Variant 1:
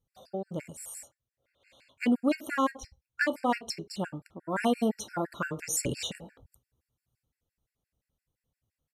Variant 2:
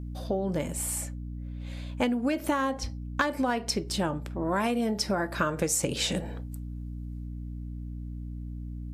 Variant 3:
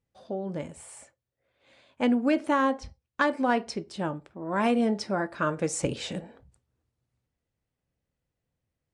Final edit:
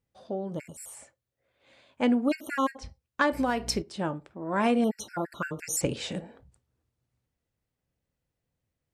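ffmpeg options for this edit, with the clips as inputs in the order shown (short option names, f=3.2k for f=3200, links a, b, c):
-filter_complex "[0:a]asplit=3[a][b][c];[2:a]asplit=5[d][e][f][g][h];[d]atrim=end=0.6[i];[a]atrim=start=0.44:end=1[j];[e]atrim=start=0.84:end=2.252[k];[b]atrim=start=2.248:end=2.782[l];[f]atrim=start=2.778:end=3.322[m];[1:a]atrim=start=3.318:end=3.822[n];[g]atrim=start=3.818:end=4.842[o];[c]atrim=start=4.838:end=5.812[p];[h]atrim=start=5.808[q];[i][j]acrossfade=d=0.16:c1=tri:c2=tri[r];[r][k]acrossfade=d=0.16:c1=tri:c2=tri[s];[s][l]acrossfade=d=0.004:c1=hsin:c2=hsin[t];[t][m]acrossfade=d=0.004:c1=hsin:c2=hsin[u];[u][n]acrossfade=d=0.004:c1=hsin:c2=hsin[v];[v][o]acrossfade=d=0.004:c1=hsin:c2=hsin[w];[w][p]acrossfade=d=0.004:c1=hsin:c2=hsin[x];[x][q]acrossfade=d=0.004:c1=hsin:c2=hsin"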